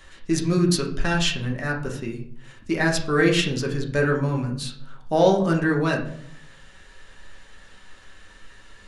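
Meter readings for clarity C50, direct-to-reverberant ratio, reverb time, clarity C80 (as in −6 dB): 8.0 dB, −0.5 dB, 0.65 s, 12.5 dB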